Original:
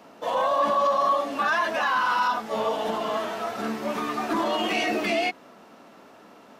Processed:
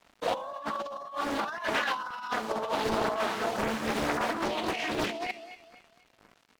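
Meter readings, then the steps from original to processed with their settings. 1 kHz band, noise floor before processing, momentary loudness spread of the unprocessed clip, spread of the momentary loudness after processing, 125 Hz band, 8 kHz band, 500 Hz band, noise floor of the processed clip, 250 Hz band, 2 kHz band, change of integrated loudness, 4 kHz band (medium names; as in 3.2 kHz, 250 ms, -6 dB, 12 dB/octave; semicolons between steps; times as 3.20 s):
-8.0 dB, -51 dBFS, 8 LU, 7 LU, +2.0 dB, -1.0 dB, -5.5 dB, -65 dBFS, -4.0 dB, -5.5 dB, -6.0 dB, -4.0 dB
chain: LFO notch saw up 1.9 Hz 240–3300 Hz; crossover distortion -47 dBFS; on a send: thinning echo 246 ms, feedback 37%, high-pass 420 Hz, level -22.5 dB; on the sum: compressor with a negative ratio -30 dBFS, ratio -0.5; loudspeaker Doppler distortion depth 0.99 ms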